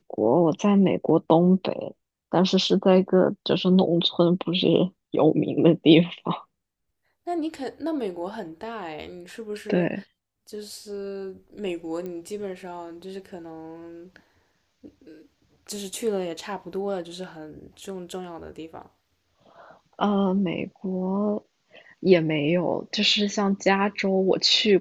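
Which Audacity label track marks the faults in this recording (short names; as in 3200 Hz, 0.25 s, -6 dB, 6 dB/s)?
12.060000	12.060000	pop -23 dBFS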